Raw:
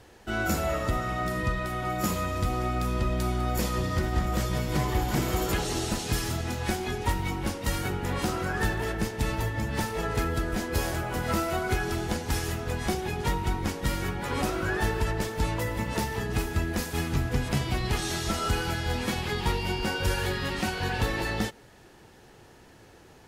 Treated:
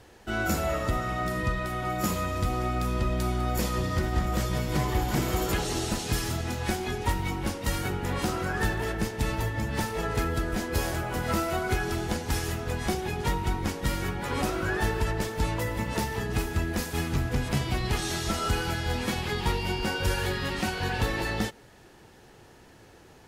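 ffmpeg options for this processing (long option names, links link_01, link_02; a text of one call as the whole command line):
ffmpeg -i in.wav -filter_complex "[0:a]asettb=1/sr,asplit=3[link_01][link_02][link_03];[link_01]atrim=end=16.564[link_04];[link_02]atrim=start=16.56:end=17.54,asetpts=PTS-STARTPTS,afade=type=in:duration=0.004:curve=qsin,afade=type=out:start_time=0.976:duration=0.004:curve=qsin,volume=19dB,asoftclip=hard,volume=-19dB[link_05];[link_03]atrim=start=17.536[link_06];[link_04][link_05]acrossfade=duration=0.004:curve1=hsin:curve2=qsin[link_07];[link_07][link_06]acrossfade=duration=0.004:curve1=qsin:curve2=hsin" out.wav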